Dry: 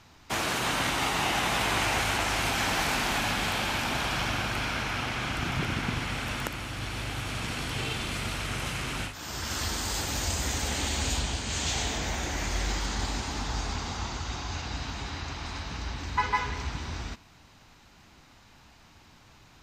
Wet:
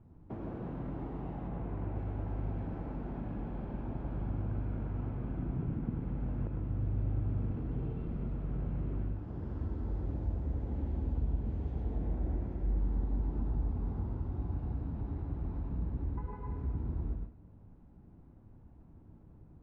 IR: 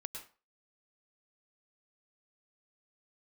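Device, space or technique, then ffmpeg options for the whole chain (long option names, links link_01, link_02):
television next door: -filter_complex "[0:a]acompressor=threshold=-32dB:ratio=4,lowpass=340[link_01];[1:a]atrim=start_sample=2205[link_02];[link_01][link_02]afir=irnorm=-1:irlink=0,asettb=1/sr,asplit=3[link_03][link_04][link_05];[link_03]atrim=end=1.484[link_06];[link_04]atrim=start=1.48:end=1.96,asetpts=PTS-STARTPTS,afade=type=in:duration=0.004:curve=qsin,afade=type=out:start_time=0.476:duration=0.004:curve=qsin,lowpass=3600[link_07];[link_05]atrim=start=1.956[link_08];[link_06][link_07]acrossfade=duration=0.004:curve1=hsin:curve2=qsin[link_09];[link_09][link_08]acrossfade=duration=0.004:curve1=qsin:curve2=hsin,volume=5.5dB"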